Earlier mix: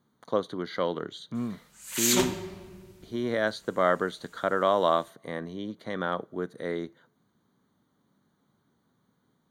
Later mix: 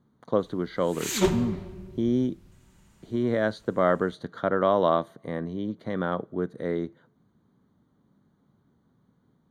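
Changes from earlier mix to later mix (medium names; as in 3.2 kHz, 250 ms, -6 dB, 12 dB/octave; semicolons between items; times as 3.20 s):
background: entry -0.95 s; master: add tilt EQ -2.5 dB/octave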